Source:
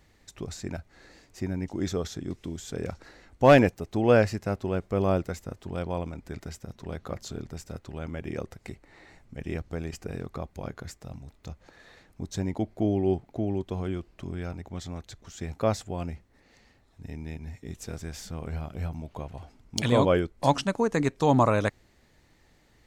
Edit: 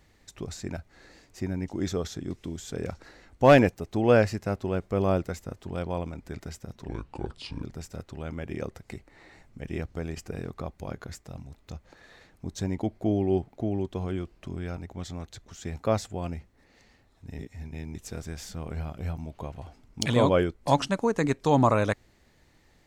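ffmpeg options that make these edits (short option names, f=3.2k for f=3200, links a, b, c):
-filter_complex "[0:a]asplit=5[a][b][c][d][e];[a]atrim=end=6.884[f];[b]atrim=start=6.88:end=7.39,asetpts=PTS-STARTPTS,asetrate=29988,aresample=44100[g];[c]atrim=start=7.386:end=17.152[h];[d]atrim=start=17.148:end=17.712,asetpts=PTS-STARTPTS,areverse[i];[e]atrim=start=17.708[j];[f][g]acrossfade=d=0.004:c1=hsin:c2=hsin[k];[k][h]acrossfade=d=0.004:c1=hsin:c2=hsin[l];[l][i]acrossfade=d=0.004:c1=hsin:c2=hsin[m];[m][j]acrossfade=d=0.004:c1=hsin:c2=hsin"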